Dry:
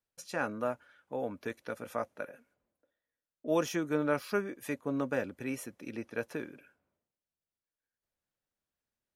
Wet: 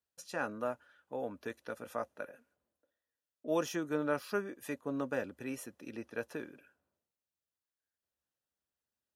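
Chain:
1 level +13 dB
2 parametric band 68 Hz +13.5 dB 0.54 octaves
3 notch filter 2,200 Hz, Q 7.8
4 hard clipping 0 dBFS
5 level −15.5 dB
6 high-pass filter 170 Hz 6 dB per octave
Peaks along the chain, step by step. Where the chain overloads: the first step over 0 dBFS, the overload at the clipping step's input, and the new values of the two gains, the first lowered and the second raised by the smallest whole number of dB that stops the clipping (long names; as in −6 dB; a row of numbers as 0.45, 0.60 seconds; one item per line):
−2.5, −2.0, −2.5, −2.5, −18.0, −19.0 dBFS
no step passes full scale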